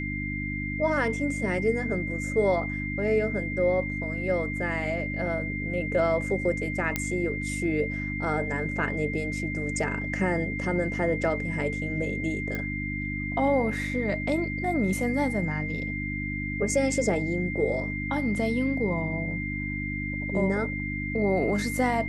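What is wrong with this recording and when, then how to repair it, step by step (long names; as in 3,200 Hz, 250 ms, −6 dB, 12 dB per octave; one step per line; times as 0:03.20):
mains hum 50 Hz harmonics 6 −33 dBFS
whistle 2,100 Hz −33 dBFS
0:06.96: click −10 dBFS
0:12.55: click −19 dBFS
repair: click removal
notch filter 2,100 Hz, Q 30
hum removal 50 Hz, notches 6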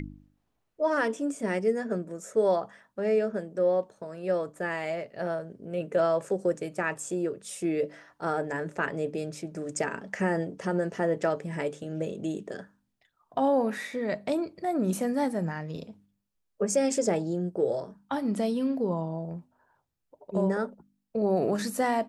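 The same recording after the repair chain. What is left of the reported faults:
none of them is left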